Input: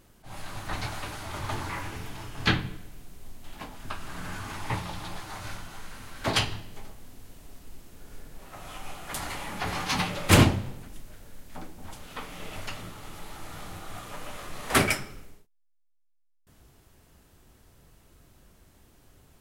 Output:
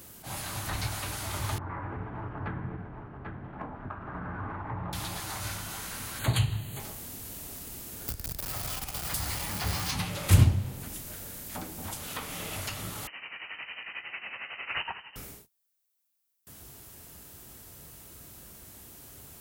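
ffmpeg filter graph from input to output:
-filter_complex "[0:a]asettb=1/sr,asplit=3[s0][s1][s2];[s0]atrim=end=1.584[s3];[s1]atrim=start=1.58:end=4.93,asetpts=PTS-STARTPTS,afade=t=in:d=0.004:c=qsin,afade=t=out:st=3.346:d=0.004:c=qsin,lowpass=f=1500:w=0.5412,lowpass=f=1500:w=1.3066,acompressor=threshold=0.0178:ratio=4:attack=3.2:release=140:knee=1:detection=peak,aecho=1:1:789:0.355,atrim=end_sample=147735[s4];[s2]atrim=start=4.926[s5];[s3][s4]acrossfade=d=0.004:c1=hsin:c2=qsin[s6];[s6][s5]acrossfade=d=0.004:c1=qsin:c2=hsin,asettb=1/sr,asplit=3[s7][s8][s9];[s7]atrim=end=6.194[s10];[s8]atrim=start=6.19:end=6.8,asetpts=PTS-STARTPTS,afade=t=in:d=0.004:c=qsin,afade=t=out:st=0.606:d=0.004:c=qsin,asuperstop=centerf=5400:order=20:qfactor=3.1,equalizer=f=130:t=o:w=0.54:g=10.5[s11];[s9]atrim=start=6.796[s12];[s10][s11]acrossfade=d=0.004:c1=hsin:c2=qsin[s13];[s13][s12]acrossfade=d=0.004:c1=qsin:c2=hsin,asettb=1/sr,asplit=3[s14][s15][s16];[s14]atrim=end=8.084[s17];[s15]atrim=start=8.08:end=9.91,asetpts=PTS-STARTPTS,afade=t=in:d=0.004:c=qsin,afade=t=out:st=1.826:d=0.004:c=qsin,aeval=exprs='val(0)+0.5*0.0316*sgn(val(0))':c=same,equalizer=f=4800:t=o:w=0.32:g=6[s18];[s16]atrim=start=9.906[s19];[s17][s18]acrossfade=d=0.004:c1=hsin:c2=qsin[s20];[s20][s19]acrossfade=d=0.004:c1=qsin:c2=hsin,asettb=1/sr,asplit=3[s21][s22][s23];[s21]atrim=end=13.074[s24];[s22]atrim=start=13.07:end=15.16,asetpts=PTS-STARTPTS,afade=t=in:d=0.004:c=qsin,afade=t=out:st=2.086:d=0.004:c=qsin,highpass=280,tremolo=f=11:d=0.71,lowpass=f=2700:t=q:w=0.5098,lowpass=f=2700:t=q:w=0.6013,lowpass=f=2700:t=q:w=0.9,lowpass=f=2700:t=q:w=2.563,afreqshift=-3200[s25];[s23]atrim=start=15.156[s26];[s24][s25]acrossfade=d=0.004:c1=hsin:c2=qsin[s27];[s27][s26]acrossfade=d=0.004:c1=qsin:c2=hsin,highpass=59,aemphasis=mode=production:type=50kf,acrossover=split=120[s28][s29];[s29]acompressor=threshold=0.00794:ratio=3[s30];[s28][s30]amix=inputs=2:normalize=0,volume=2"

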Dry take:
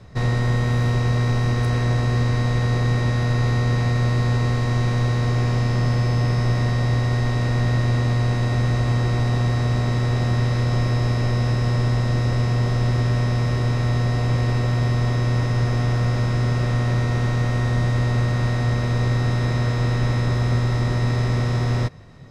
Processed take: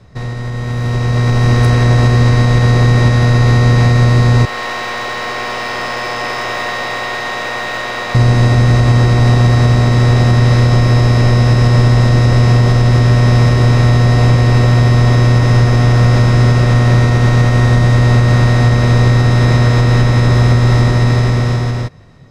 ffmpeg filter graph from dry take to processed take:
-filter_complex "[0:a]asettb=1/sr,asplit=3[s0][s1][s2];[s0]atrim=end=4.454[s3];[s1]atrim=start=4.45:end=8.15,asetpts=PTS-STARTPTS,afade=t=in:d=0.004:c=qsin,afade=t=out:st=3.696:d=0.004:c=qsin,highpass=690,lowpass=4300,aeval=exprs='clip(val(0),-1,0.0188)':c=same[s4];[s2]atrim=start=8.146[s5];[s3][s4]acrossfade=d=0.004:c1=hsin:c2=qsin[s6];[s6][s5]acrossfade=d=0.004:c1=qsin:c2=hsin,alimiter=limit=0.168:level=0:latency=1:release=185,dynaudnorm=f=200:g=11:m=5.01,volume=1.19"

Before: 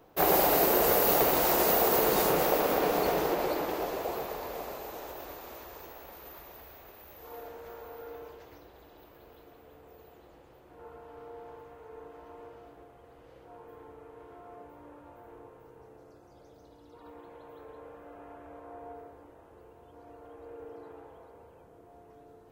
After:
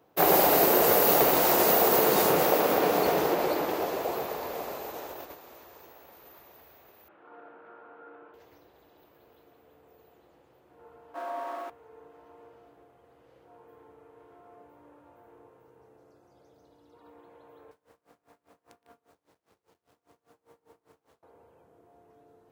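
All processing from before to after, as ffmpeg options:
-filter_complex "[0:a]asettb=1/sr,asplit=3[s0][s1][s2];[s0]atrim=end=7.084[s3];[s1]atrim=start=7.08:end=8.34,asetpts=PTS-STARTPTS,afade=t=in:d=0.004:c=qsin,afade=t=out:st=1.256:d=0.004:c=qsin,acompressor=mode=upward:threshold=0.00224:ratio=2.5:attack=3.2:release=140:knee=2.83:detection=peak,highpass=f=120:w=0.5412,highpass=f=120:w=1.3066,equalizer=f=130:t=q:w=4:g=-9,equalizer=f=320:t=q:w=4:g=6,equalizer=f=450:t=q:w=4:g=-5,equalizer=f=1400:t=q:w=4:g=10,equalizer=f=2000:t=q:w=4:g=-4,lowpass=f=2600:w=0.5412,lowpass=f=2600:w=1.3066[s4];[s2]atrim=start=8.336[s5];[s3][s4]acrossfade=d=0.004:c1=hsin:c2=qsin[s6];[s6][s5]acrossfade=d=0.004:c1=qsin:c2=hsin,asettb=1/sr,asplit=3[s7][s8][s9];[s7]atrim=end=11.144[s10];[s8]atrim=start=11.14:end=11.7,asetpts=PTS-STARTPTS,afade=t=in:d=0.004:c=qsin,afade=t=out:st=0.556:d=0.004:c=qsin,aeval=exprs='val(0)+0.5*0.00112*sgn(val(0))':c=same,acontrast=81,afreqshift=230[s11];[s9]atrim=start=11.696[s12];[s10][s11]acrossfade=d=0.004:c1=hsin:c2=qsin[s13];[s13][s12]acrossfade=d=0.004:c1=qsin:c2=hsin,asettb=1/sr,asplit=3[s14][s15][s16];[s14]atrim=end=17.714[s17];[s15]atrim=start=17.71:end=21.23,asetpts=PTS-STARTPTS,afade=t=in:d=0.004:c=qsin,afade=t=out:st=3.516:d=0.004:c=qsin,acrusher=bits=7:dc=4:mix=0:aa=0.000001,aeval=exprs='val(0)*pow(10,-26*(0.5-0.5*cos(2*PI*5*n/s))/20)':c=same[s18];[s16]atrim=start=21.226[s19];[s17][s18]acrossfade=d=0.004:c1=hsin:c2=qsin[s20];[s20][s19]acrossfade=d=0.004:c1=qsin:c2=hsin,highpass=94,agate=range=0.398:threshold=0.00794:ratio=16:detection=peak,volume=1.41"

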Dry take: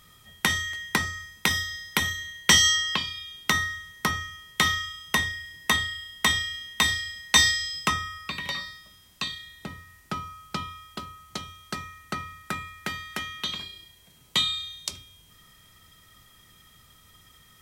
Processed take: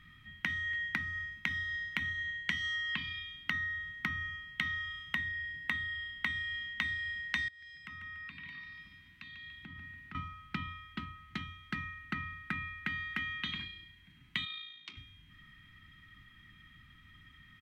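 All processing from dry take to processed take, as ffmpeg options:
-filter_complex "[0:a]asettb=1/sr,asplit=3[s0][s1][s2];[s0]atrim=end=7.484[s3];[s1]atrim=start=7.48:end=10.15,asetpts=PTS-STARTPTS,afade=t=in:d=0.004:c=qsin,afade=t=out:st=2.666:d=0.004:c=qsin,highpass=55,acompressor=threshold=0.00708:ratio=10:attack=3.2:release=140:knee=1:detection=peak,aecho=1:1:144|288|432|576|720:0.376|0.18|0.0866|0.0416|0.02,atrim=end_sample=117747[s4];[s2]atrim=start=10.146[s5];[s3][s4]acrossfade=d=0.004:c1=hsin:c2=qsin[s6];[s6][s5]acrossfade=d=0.004:c1=qsin:c2=hsin,asettb=1/sr,asplit=3[s7][s8][s9];[s7]atrim=end=14.454[s10];[s8]atrim=start=14.45:end=14.97,asetpts=PTS-STARTPTS,afade=t=in:d=0.004:c=qsin,afade=t=out:st=0.516:d=0.004:c=qsin,tremolo=f=55:d=0.462,highpass=310,lowpass=4600,equalizer=f=1700:w=6.6:g=-7[s11];[s9]atrim=start=14.966[s12];[s10][s11]acrossfade=d=0.004:c1=hsin:c2=qsin[s13];[s13][s12]acrossfade=d=0.004:c1=qsin:c2=hsin,firequalizer=gain_entry='entry(290,0);entry(490,-28);entry(780,-14);entry(1900,4);entry(5000,-19);entry(7500,-25)':delay=0.05:min_phase=1,acompressor=threshold=0.0251:ratio=12"

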